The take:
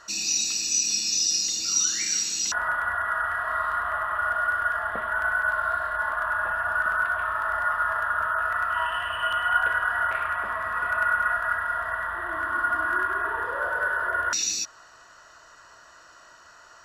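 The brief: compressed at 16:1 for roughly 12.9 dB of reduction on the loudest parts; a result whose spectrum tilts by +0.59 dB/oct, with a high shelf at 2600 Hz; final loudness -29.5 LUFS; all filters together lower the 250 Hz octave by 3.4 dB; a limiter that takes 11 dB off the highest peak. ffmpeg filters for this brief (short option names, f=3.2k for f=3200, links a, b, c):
-af "equalizer=f=250:t=o:g=-5,highshelf=f=2.6k:g=-4,acompressor=threshold=-31dB:ratio=16,volume=9.5dB,alimiter=limit=-23dB:level=0:latency=1"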